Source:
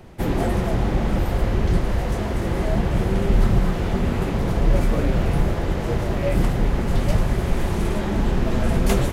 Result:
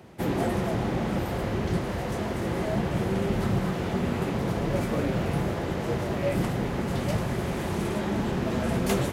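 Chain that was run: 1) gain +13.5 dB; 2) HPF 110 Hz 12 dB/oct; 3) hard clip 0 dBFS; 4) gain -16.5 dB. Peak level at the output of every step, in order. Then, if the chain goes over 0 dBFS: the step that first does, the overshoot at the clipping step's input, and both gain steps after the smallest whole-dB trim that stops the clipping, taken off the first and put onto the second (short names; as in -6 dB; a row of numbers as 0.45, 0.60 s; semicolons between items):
+7.5, +6.0, 0.0, -16.5 dBFS; step 1, 6.0 dB; step 1 +7.5 dB, step 4 -10.5 dB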